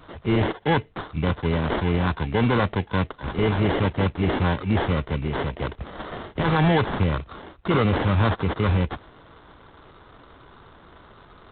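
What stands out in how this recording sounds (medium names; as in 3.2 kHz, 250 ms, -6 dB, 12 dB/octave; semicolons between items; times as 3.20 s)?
aliases and images of a low sample rate 2.5 kHz, jitter 0%; G.726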